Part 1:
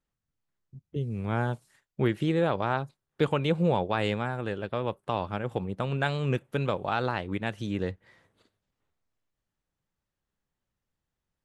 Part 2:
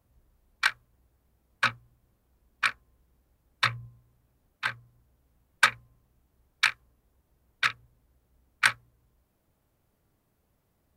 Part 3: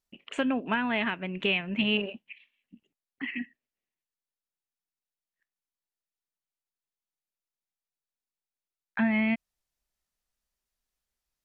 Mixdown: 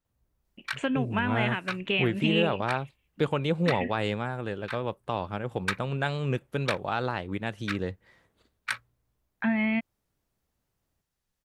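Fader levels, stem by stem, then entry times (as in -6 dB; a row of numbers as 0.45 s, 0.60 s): -1.0 dB, -9.0 dB, -0.5 dB; 0.00 s, 0.05 s, 0.45 s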